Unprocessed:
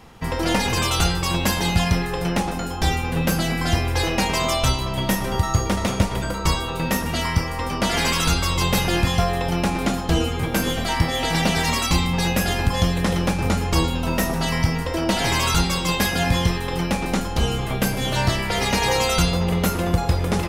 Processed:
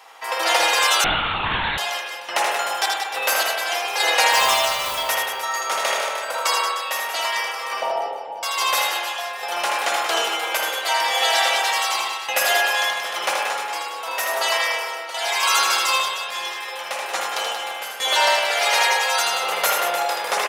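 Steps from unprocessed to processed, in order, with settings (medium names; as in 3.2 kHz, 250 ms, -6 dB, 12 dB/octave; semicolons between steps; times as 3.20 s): 7.80–8.43 s: Chebyshev low-pass 940 Hz, order 10; reverb removal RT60 0.61 s; high-pass 620 Hz 24 dB/octave; 4.32–4.95 s: word length cut 6-bit, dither triangular; random-step tremolo, depth 95%; on a send: reverse bouncing-ball echo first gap 80 ms, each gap 1.25×, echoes 5; on the sum: spring tank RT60 1.1 s, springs 51 ms, chirp 75 ms, DRR 0.5 dB; 1.04–1.78 s: LPC vocoder at 8 kHz whisper; trim +6 dB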